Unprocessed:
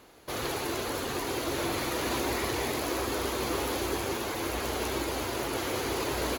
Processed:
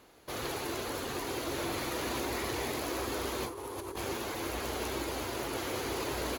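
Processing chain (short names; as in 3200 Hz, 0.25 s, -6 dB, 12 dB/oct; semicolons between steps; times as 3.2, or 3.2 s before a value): 3.46–3.96 fifteen-band EQ 100 Hz +11 dB, 400 Hz +11 dB, 1000 Hz +11 dB, 10000 Hz +9 dB; negative-ratio compressor -30 dBFS, ratio -1; gain -5 dB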